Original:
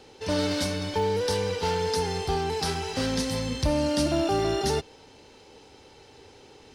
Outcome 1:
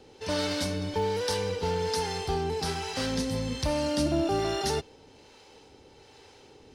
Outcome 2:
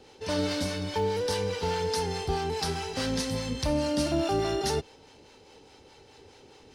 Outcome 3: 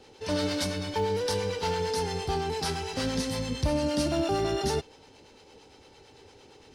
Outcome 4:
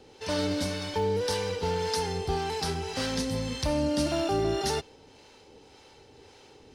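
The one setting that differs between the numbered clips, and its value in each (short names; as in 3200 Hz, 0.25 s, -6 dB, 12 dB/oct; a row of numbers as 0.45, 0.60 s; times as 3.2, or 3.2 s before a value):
harmonic tremolo, rate: 1.2, 4.8, 8.8, 1.8 Hz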